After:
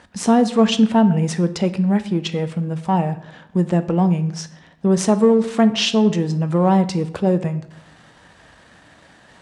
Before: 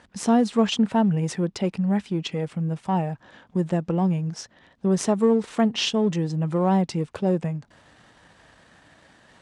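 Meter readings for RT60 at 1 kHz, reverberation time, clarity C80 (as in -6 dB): 0.65 s, 0.70 s, 17.0 dB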